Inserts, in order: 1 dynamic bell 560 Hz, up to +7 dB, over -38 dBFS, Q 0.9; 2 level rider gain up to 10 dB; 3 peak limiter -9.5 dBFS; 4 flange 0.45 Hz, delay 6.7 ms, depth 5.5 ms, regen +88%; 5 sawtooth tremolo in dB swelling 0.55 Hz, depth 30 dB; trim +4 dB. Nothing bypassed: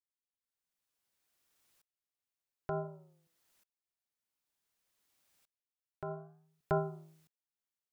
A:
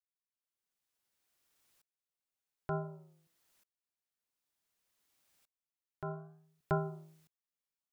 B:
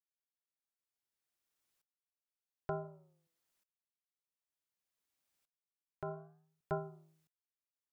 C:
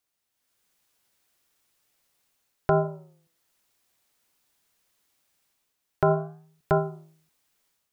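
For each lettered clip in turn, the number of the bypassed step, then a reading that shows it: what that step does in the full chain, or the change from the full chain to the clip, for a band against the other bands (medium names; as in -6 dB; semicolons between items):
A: 1, momentary loudness spread change -2 LU; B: 2, momentary loudness spread change +1 LU; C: 5, momentary loudness spread change -7 LU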